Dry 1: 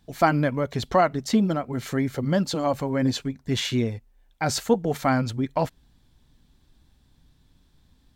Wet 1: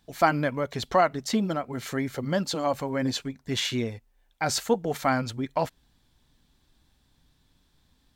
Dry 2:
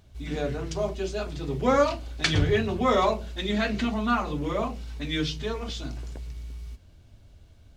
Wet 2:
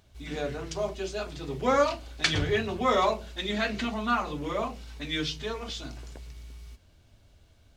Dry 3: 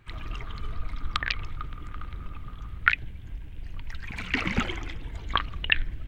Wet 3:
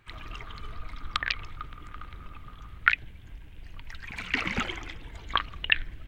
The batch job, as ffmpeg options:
-af "lowshelf=frequency=370:gain=-7"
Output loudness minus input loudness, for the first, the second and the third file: −3.0, −2.0, +1.0 LU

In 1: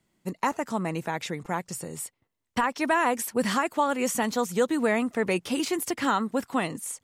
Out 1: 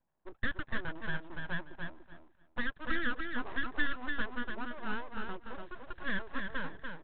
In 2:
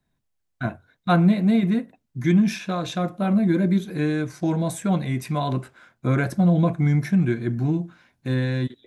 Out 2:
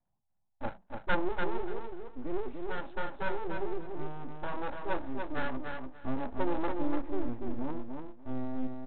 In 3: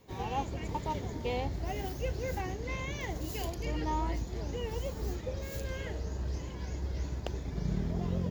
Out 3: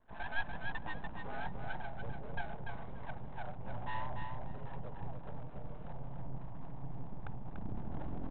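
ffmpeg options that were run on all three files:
-af "firequalizer=gain_entry='entry(110,0);entry(330,-19);entry(810,8);entry(1400,-26)':delay=0.05:min_phase=1,aresample=8000,aeval=exprs='abs(val(0))':channel_layout=same,aresample=44100,aecho=1:1:291|582|873:0.562|0.101|0.0182,volume=-4.5dB"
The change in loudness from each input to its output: −11.5, −14.5, −9.0 LU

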